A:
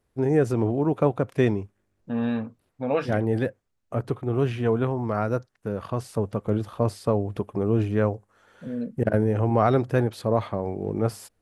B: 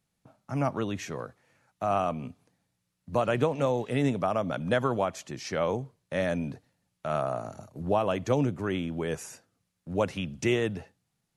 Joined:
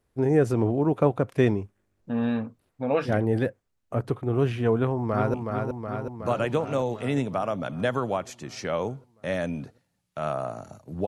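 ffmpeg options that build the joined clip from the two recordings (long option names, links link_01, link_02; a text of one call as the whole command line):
ffmpeg -i cue0.wav -i cue1.wav -filter_complex "[0:a]apad=whole_dur=11.07,atrim=end=11.07,atrim=end=5.342[link_01];[1:a]atrim=start=2.218:end=7.95[link_02];[link_01][link_02]acrossfade=duration=0.004:curve1=hsin:curve2=hsin,asplit=2[link_03][link_04];[link_04]afade=type=in:start_time=4.76:duration=0.01,afade=type=out:start_time=5.34:duration=0.01,aecho=0:1:370|740|1110|1480|1850|2220|2590|2960|3330|3700|4070|4440:0.595662|0.416964|0.291874|0.204312|0.143018|0.100113|0.0700791|0.0490553|0.0343387|0.0240371|0.016826|0.0117782[link_05];[link_03][link_05]amix=inputs=2:normalize=0" out.wav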